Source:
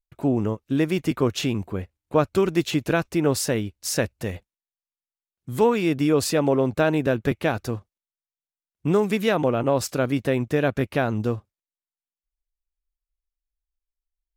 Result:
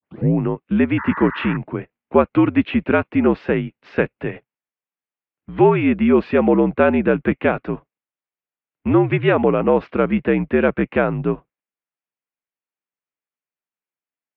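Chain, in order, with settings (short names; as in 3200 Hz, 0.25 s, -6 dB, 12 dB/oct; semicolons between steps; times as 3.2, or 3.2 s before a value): tape start at the beginning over 0.34 s; painted sound noise, 0.97–1.57, 920–2100 Hz -36 dBFS; mistuned SSB -68 Hz 200–2800 Hz; gain +6 dB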